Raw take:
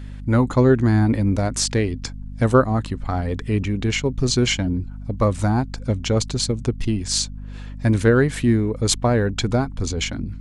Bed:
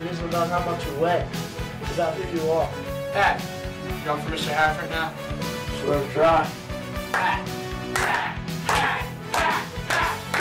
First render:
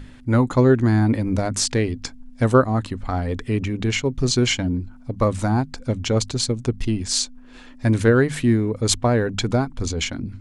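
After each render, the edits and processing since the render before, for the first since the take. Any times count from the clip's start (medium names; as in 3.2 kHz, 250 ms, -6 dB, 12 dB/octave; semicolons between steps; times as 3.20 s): hum notches 50/100/150/200 Hz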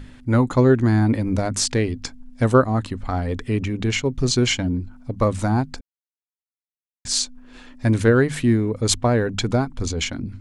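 5.81–7.05 s: mute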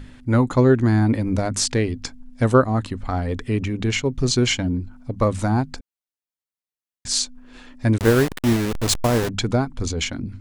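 7.98–9.29 s: send-on-delta sampling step -19.5 dBFS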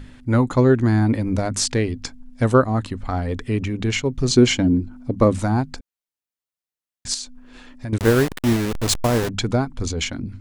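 4.30–5.39 s: peaking EQ 300 Hz +8 dB 1.6 oct; 7.14–7.93 s: compression, threshold -27 dBFS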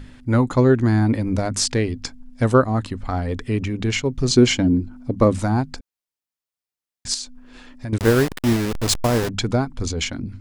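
peaking EQ 5 kHz +2.5 dB 0.2 oct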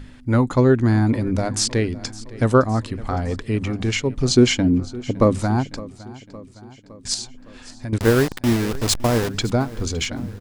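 feedback delay 562 ms, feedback 59%, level -19 dB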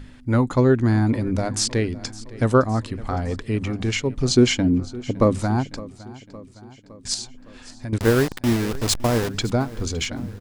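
trim -1.5 dB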